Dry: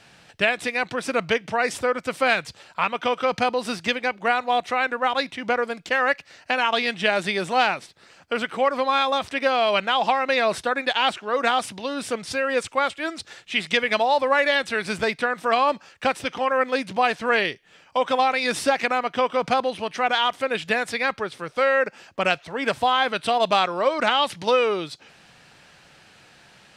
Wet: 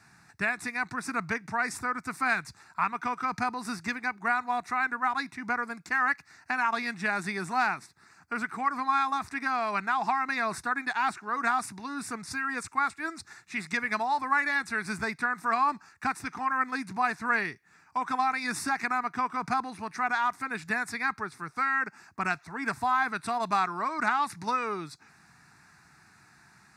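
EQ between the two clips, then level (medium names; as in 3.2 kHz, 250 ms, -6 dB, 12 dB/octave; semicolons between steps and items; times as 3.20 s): high-pass 58 Hz; static phaser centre 1.3 kHz, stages 4; -2.5 dB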